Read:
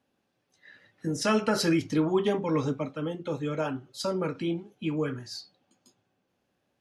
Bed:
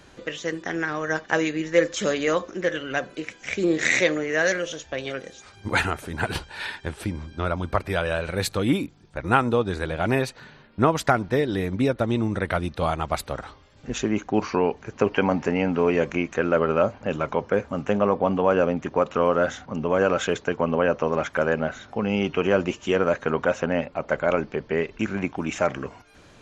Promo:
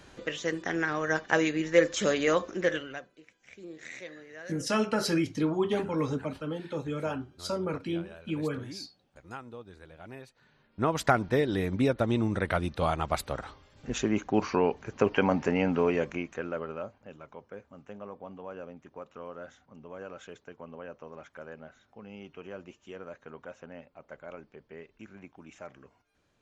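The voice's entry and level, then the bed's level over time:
3.45 s, −2.5 dB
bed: 0:02.75 −2.5 dB
0:03.12 −23 dB
0:10.30 −23 dB
0:11.03 −3.5 dB
0:15.75 −3.5 dB
0:17.18 −22 dB

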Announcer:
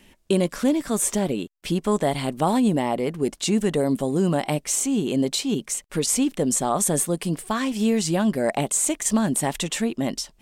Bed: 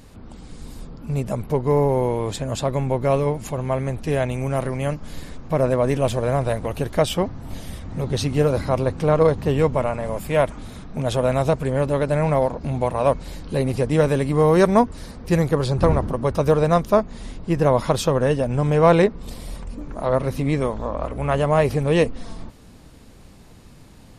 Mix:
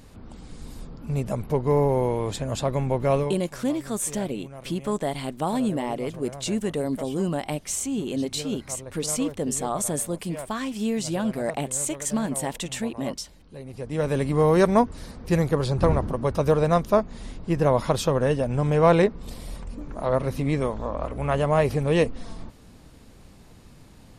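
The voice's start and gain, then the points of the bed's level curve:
3.00 s, −5.0 dB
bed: 0:03.21 −2.5 dB
0:03.43 −18.5 dB
0:13.62 −18.5 dB
0:14.19 −3 dB

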